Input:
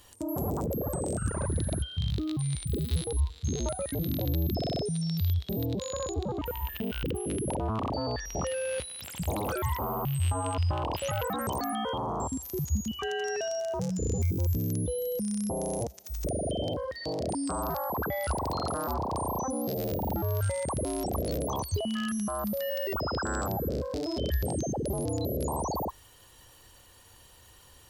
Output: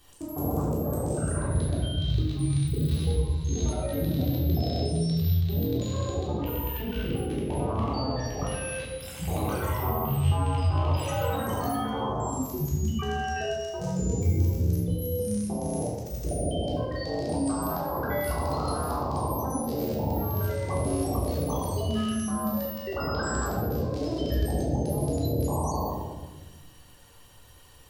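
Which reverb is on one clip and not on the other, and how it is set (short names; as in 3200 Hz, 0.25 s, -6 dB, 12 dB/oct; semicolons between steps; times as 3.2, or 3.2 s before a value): shoebox room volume 750 m³, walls mixed, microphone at 3.6 m; gain -6.5 dB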